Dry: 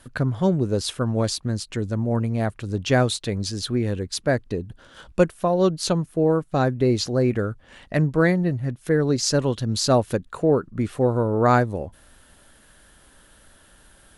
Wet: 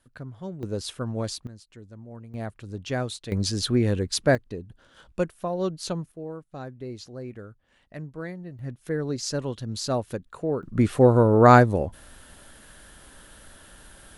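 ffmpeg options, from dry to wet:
ffmpeg -i in.wav -af "asetnsamples=nb_out_samples=441:pad=0,asendcmd='0.63 volume volume -7dB;1.47 volume volume -19.5dB;2.34 volume volume -9.5dB;3.32 volume volume 1.5dB;4.35 volume volume -8dB;6.12 volume volume -17dB;8.59 volume volume -8dB;10.63 volume volume 4dB',volume=-16dB" out.wav

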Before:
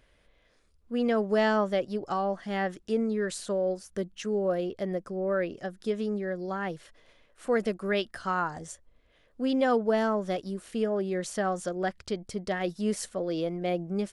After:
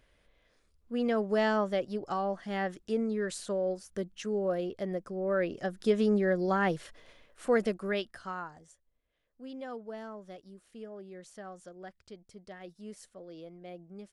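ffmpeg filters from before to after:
ffmpeg -i in.wav -af "volume=5dB,afade=type=in:start_time=5.21:duration=0.93:silence=0.398107,afade=type=out:start_time=6.72:duration=1.38:silence=0.266073,afade=type=out:start_time=8.1:duration=0.54:silence=0.316228" out.wav

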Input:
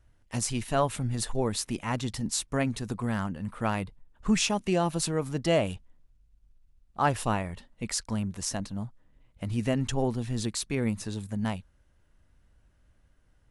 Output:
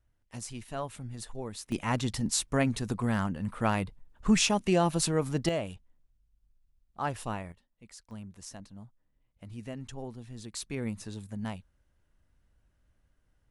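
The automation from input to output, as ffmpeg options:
ffmpeg -i in.wav -af "asetnsamples=nb_out_samples=441:pad=0,asendcmd='1.72 volume volume 1dB;5.49 volume volume -7.5dB;7.52 volume volume -19.5dB;8.11 volume volume -13dB;10.53 volume volume -6dB',volume=-10.5dB" out.wav

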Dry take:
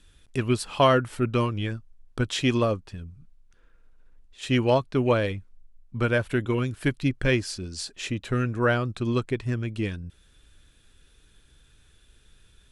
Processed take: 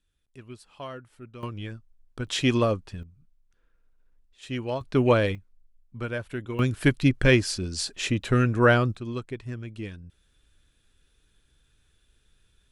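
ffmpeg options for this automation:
ffmpeg -i in.wav -af "asetnsamples=nb_out_samples=441:pad=0,asendcmd='1.43 volume volume -7dB;2.27 volume volume 0.5dB;3.03 volume volume -9dB;4.81 volume volume 2dB;5.35 volume volume -8dB;6.59 volume volume 4dB;8.96 volume volume -7.5dB',volume=-19.5dB" out.wav

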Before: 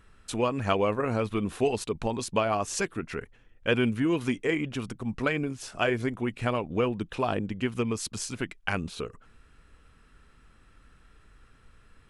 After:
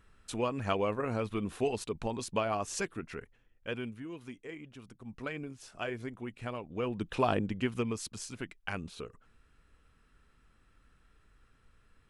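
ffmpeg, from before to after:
ffmpeg -i in.wav -af "volume=12dB,afade=type=out:start_time=2.83:duration=1.21:silence=0.251189,afade=type=in:start_time=4.82:duration=0.52:silence=0.473151,afade=type=in:start_time=6.75:duration=0.46:silence=0.281838,afade=type=out:start_time=7.21:duration=0.94:silence=0.398107" out.wav

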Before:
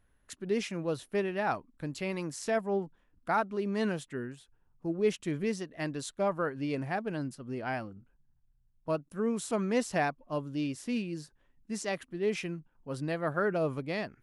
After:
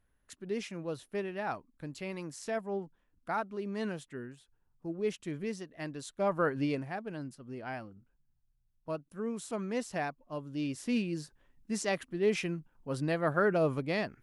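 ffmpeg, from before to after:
ffmpeg -i in.wav -af "volume=12dB,afade=type=in:start_time=6.1:duration=0.47:silence=0.334965,afade=type=out:start_time=6.57:duration=0.28:silence=0.316228,afade=type=in:start_time=10.41:duration=0.55:silence=0.421697" out.wav

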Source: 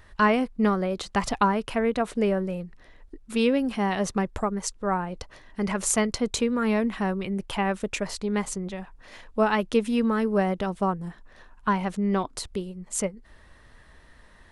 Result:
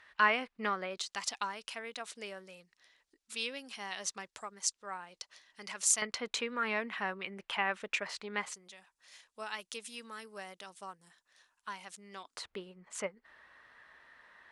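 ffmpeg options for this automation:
ffmpeg -i in.wav -af "asetnsamples=nb_out_samples=441:pad=0,asendcmd='0.97 bandpass f 5700;6.02 bandpass f 2100;8.54 bandpass f 7700;12.37 bandpass f 1600',bandpass=frequency=2300:width_type=q:width=0.94:csg=0" out.wav

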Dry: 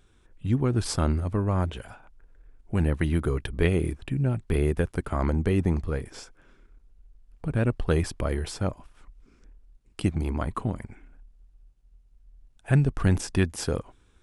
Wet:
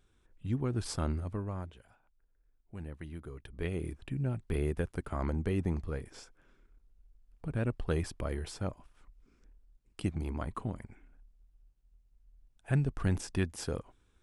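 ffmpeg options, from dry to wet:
ffmpeg -i in.wav -af "volume=2.5dB,afade=type=out:start_time=1.22:duration=0.53:silence=0.298538,afade=type=in:start_time=3.36:duration=0.75:silence=0.281838" out.wav

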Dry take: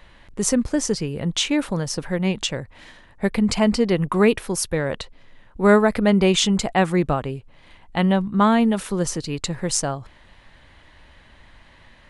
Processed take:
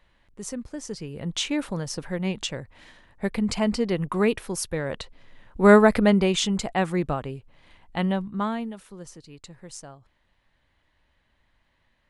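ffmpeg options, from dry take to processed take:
ffmpeg -i in.wav -af "volume=1.5dB,afade=type=in:start_time=0.82:duration=0.56:silence=0.375837,afade=type=in:start_time=4.83:duration=1.08:silence=0.446684,afade=type=out:start_time=5.91:duration=0.37:silence=0.446684,afade=type=out:start_time=8.02:duration=0.76:silence=0.223872" out.wav

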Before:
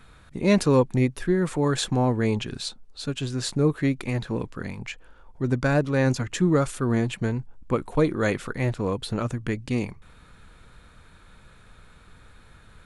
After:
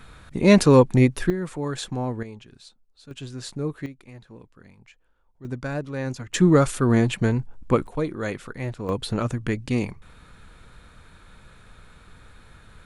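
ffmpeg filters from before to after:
ffmpeg -i in.wav -af "asetnsamples=nb_out_samples=441:pad=0,asendcmd='1.3 volume volume -5.5dB;2.23 volume volume -16dB;3.11 volume volume -7dB;3.86 volume volume -17dB;5.45 volume volume -7.5dB;6.34 volume volume 4.5dB;7.87 volume volume -5dB;8.89 volume volume 2dB',volume=5dB" out.wav

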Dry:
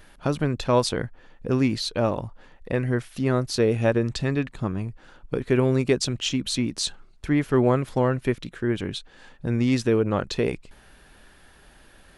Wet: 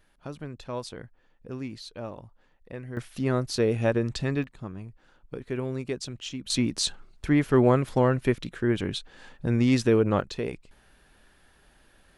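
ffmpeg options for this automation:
ffmpeg -i in.wav -af "asetnsamples=nb_out_samples=441:pad=0,asendcmd='2.97 volume volume -3dB;4.44 volume volume -10.5dB;6.5 volume volume 0dB;10.21 volume volume -7dB',volume=-14dB" out.wav

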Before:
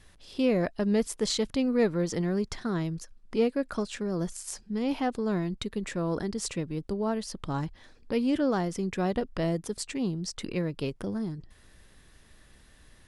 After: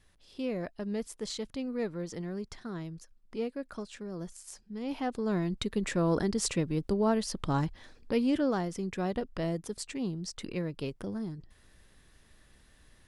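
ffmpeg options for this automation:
ffmpeg -i in.wav -af "volume=2.5dB,afade=type=in:start_time=4.75:duration=1.16:silence=0.266073,afade=type=out:start_time=7.52:duration=1.17:silence=0.473151" out.wav

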